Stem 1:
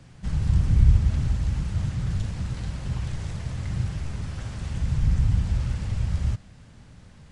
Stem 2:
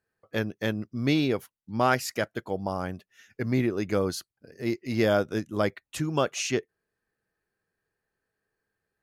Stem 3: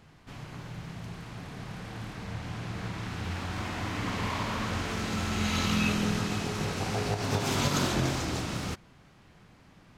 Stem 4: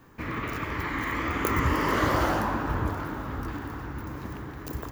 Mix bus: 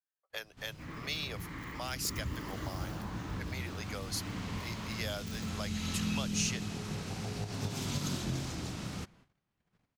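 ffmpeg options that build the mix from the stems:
-filter_complex "[1:a]highpass=f=620:w=0.5412,highpass=f=620:w=1.3066,volume=-0.5dB[a];[2:a]adynamicequalizer=threshold=0.00794:dfrequency=180:dqfactor=2.6:tfrequency=180:tqfactor=2.6:attack=5:release=100:ratio=0.375:range=1.5:mode=boostabove:tftype=bell,adelay=300,volume=-6.5dB[b];[3:a]adelay=600,volume=-11.5dB[c];[a][b][c]amix=inputs=3:normalize=0,agate=range=-21dB:threshold=-59dB:ratio=16:detection=peak,acrossover=split=290|3000[d][e][f];[e]acompressor=threshold=-45dB:ratio=4[g];[d][g][f]amix=inputs=3:normalize=0"

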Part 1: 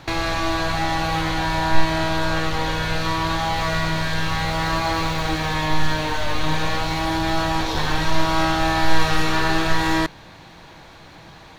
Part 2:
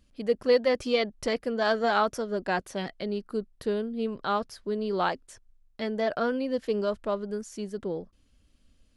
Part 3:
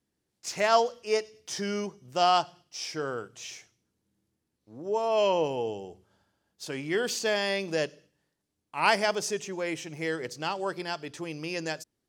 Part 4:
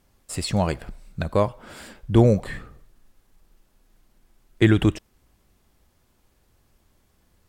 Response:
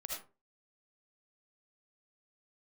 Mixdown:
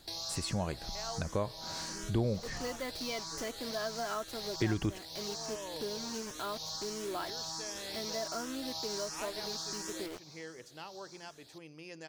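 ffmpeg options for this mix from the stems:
-filter_complex "[0:a]highpass=f=180:p=1,highshelf=f=3.6k:t=q:w=3:g=14,asplit=2[a][b];[b]afreqshift=1.4[c];[a][c]amix=inputs=2:normalize=1,volume=-16dB[d];[1:a]aecho=1:1:3:0.55,acrusher=bits=5:mix=0:aa=0.000001,adelay=2150,volume=-5dB[e];[2:a]adelay=350,volume=-14.5dB[f];[3:a]volume=0.5dB,asplit=2[g][h];[h]apad=whole_len=548450[i];[f][i]sidechaincompress=threshold=-23dB:ratio=8:attack=16:release=537[j];[d][e][j][g]amix=inputs=4:normalize=0,acompressor=threshold=-41dB:ratio=2"

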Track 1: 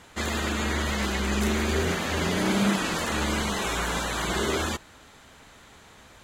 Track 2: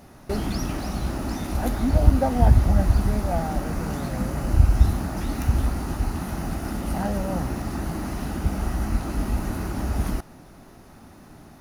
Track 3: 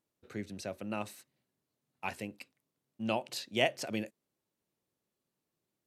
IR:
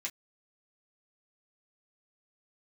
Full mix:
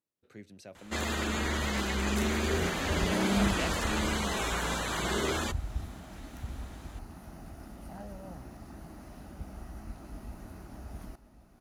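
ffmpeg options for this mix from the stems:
-filter_complex "[0:a]adelay=750,volume=-4dB[a];[1:a]equalizer=f=650:w=5.2:g=4,adelay=950,volume=-18.5dB,asplit=2[b][c];[c]volume=-15.5dB[d];[2:a]volume=-8.5dB[e];[d]aecho=0:1:1095:1[f];[a][b][e][f]amix=inputs=4:normalize=0"

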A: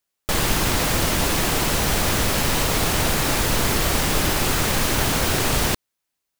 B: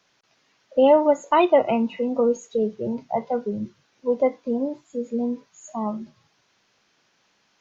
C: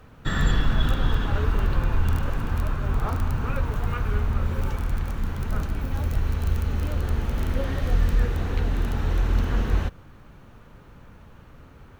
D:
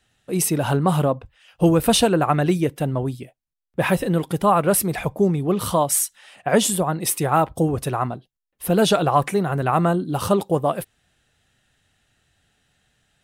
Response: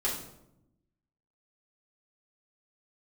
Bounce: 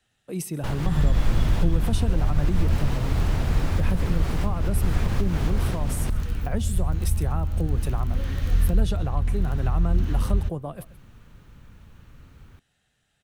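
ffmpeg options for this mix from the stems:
-filter_complex "[0:a]lowpass=f=2.1k:p=1,adelay=350,volume=-2dB,asplit=2[a][b];[b]volume=-16dB[c];[1:a]adelay=1300,volume=-20dB[d];[2:a]equalizer=f=670:w=0.45:g=-10,adelay=600,volume=1dB[e];[3:a]volume=-5.5dB,asplit=3[f][g][h];[g]volume=-22.5dB[i];[h]apad=whole_len=297418[j];[a][j]sidechaincompress=threshold=-24dB:ratio=8:attack=24:release=187[k];[c][i]amix=inputs=2:normalize=0,aecho=0:1:130:1[l];[k][d][e][f][l]amix=inputs=5:normalize=0,acrossover=split=220[m][n];[n]acompressor=threshold=-33dB:ratio=6[o];[m][o]amix=inputs=2:normalize=0"

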